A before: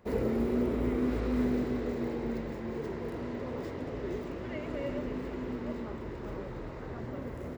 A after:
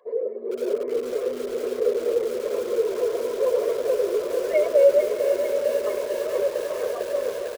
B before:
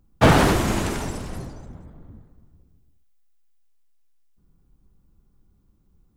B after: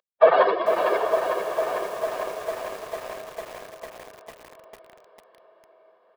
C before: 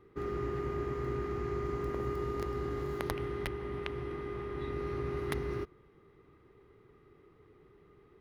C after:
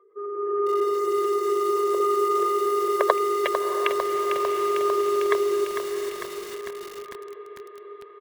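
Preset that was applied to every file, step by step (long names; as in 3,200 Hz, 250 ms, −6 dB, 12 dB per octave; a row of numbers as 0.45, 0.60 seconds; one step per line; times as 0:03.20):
expanding power law on the bin magnitudes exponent 2.1
high-pass filter 510 Hz 24 dB per octave
parametric band 3,400 Hz +4 dB 0.37 octaves
comb filter 1.8 ms, depth 73%
automatic gain control gain up to 11.5 dB
on a send: feedback delay with all-pass diffusion 702 ms, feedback 58%, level −10 dB
on the sum: downsampling to 11,025 Hz
feedback echo at a low word length 450 ms, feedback 80%, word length 7 bits, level −7.5 dB
loudness normalisation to −24 LKFS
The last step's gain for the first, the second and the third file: +7.0, +4.0, +9.5 decibels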